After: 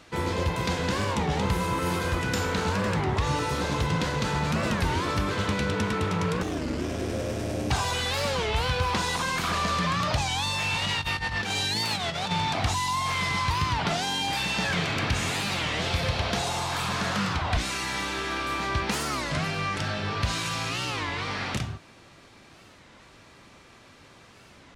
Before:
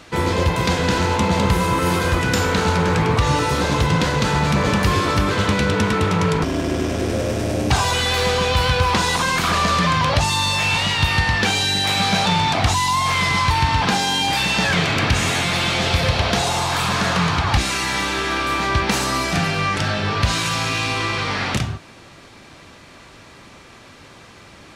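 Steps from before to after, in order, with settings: 10.82–12.31 s: compressor with a negative ratio -20 dBFS, ratio -0.5; warped record 33 1/3 rpm, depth 250 cents; trim -8.5 dB

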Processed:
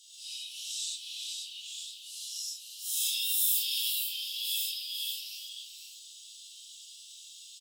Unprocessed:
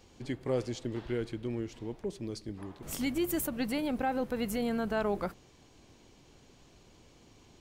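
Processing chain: phase randomisation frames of 200 ms; steep high-pass 2.4 kHz 96 dB/octave; in parallel at -2 dB: compression, threshold -57 dBFS, peak gain reduction 20 dB; on the sum: formant shift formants +3 st; on a send: delay 494 ms -6.5 dB; on the sum: gated-style reverb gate 140 ms rising, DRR -4 dB; trim +6 dB

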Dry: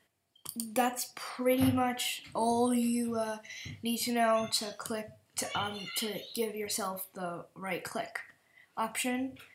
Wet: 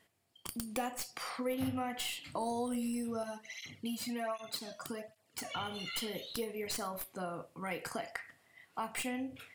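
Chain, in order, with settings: tracing distortion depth 0.058 ms; compression 2.5:1, threshold -38 dBFS, peak gain reduction 10.5 dB; 3.23–5.57 s: cancelling through-zero flanger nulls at 1.3 Hz, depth 2.6 ms; trim +1 dB

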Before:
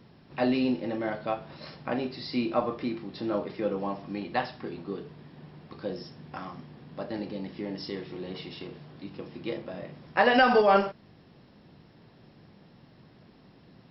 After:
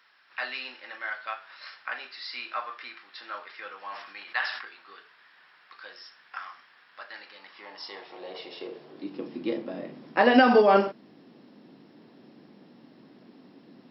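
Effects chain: high-pass sweep 1.5 kHz -> 260 Hz, 7.30–9.27 s; 3.79–4.65 s: decay stretcher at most 62 dB/s

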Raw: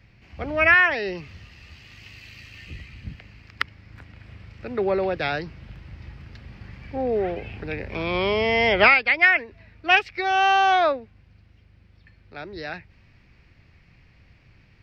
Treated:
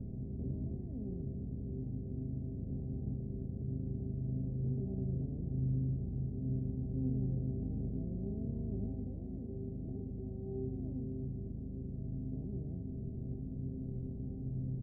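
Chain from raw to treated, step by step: spectral levelling over time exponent 0.2; inverse Chebyshev low-pass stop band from 1.3 kHz, stop band 80 dB; feedback comb 130 Hz, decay 1.2 s, harmonics all, mix 90%; on a send: delay 609 ms -11 dB; on the sum: trim +8 dB

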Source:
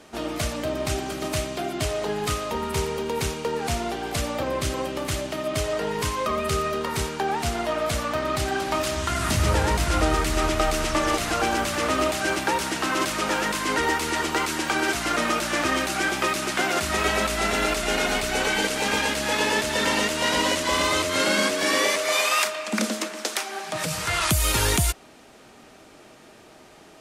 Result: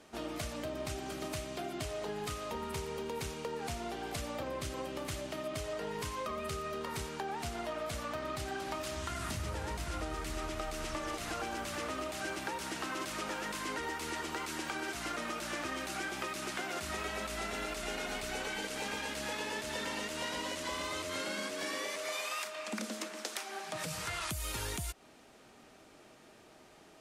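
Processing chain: compression, threshold -26 dBFS, peak gain reduction 9.5 dB; trim -9 dB

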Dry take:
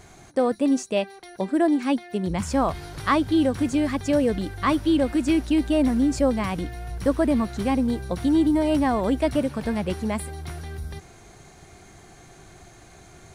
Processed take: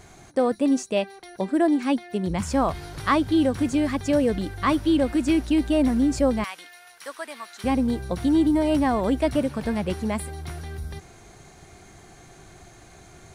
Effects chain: 6.44–7.64 s: high-pass 1.3 kHz 12 dB/octave

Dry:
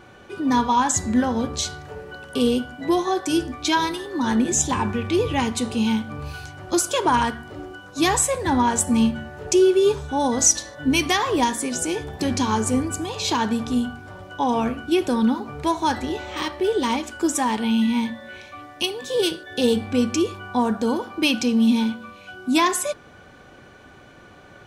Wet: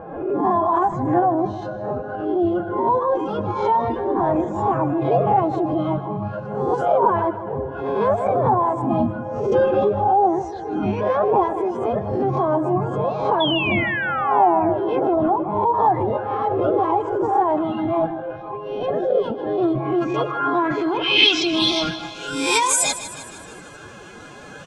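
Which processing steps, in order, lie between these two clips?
reverse spectral sustain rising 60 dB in 0.52 s; reverb removal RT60 0.67 s; peaking EQ 73 Hz -4 dB 2.4 oct; in parallel at 0 dB: compressor with a negative ratio -30 dBFS, ratio -1; on the sum: bit crusher 10-bit; formant-preserving pitch shift +6 st; low-pass sweep 770 Hz -> 8.1 kHz, 19.54–22.33 s; painted sound fall, 13.40–14.78 s, 590–3500 Hz -22 dBFS; on a send: feedback delay 155 ms, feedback 58%, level -13.5 dB; on the sum: swell ahead of each attack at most 62 dB/s; trim -2 dB

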